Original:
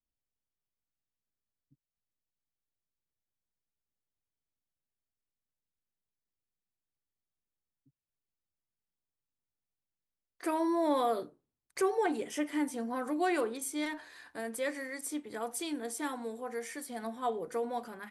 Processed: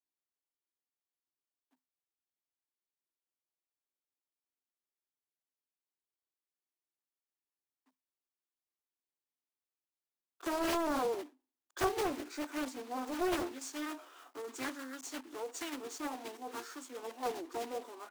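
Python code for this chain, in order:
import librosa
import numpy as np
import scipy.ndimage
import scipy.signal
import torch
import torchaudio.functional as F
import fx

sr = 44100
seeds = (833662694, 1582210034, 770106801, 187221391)

y = fx.block_float(x, sr, bits=3)
y = scipy.signal.sosfilt(scipy.signal.cheby1(6, 6, 250.0, 'highpass', fs=sr, output='sos'), y)
y = fx.formant_shift(y, sr, semitones=-5)
y = fx.doppler_dist(y, sr, depth_ms=0.68)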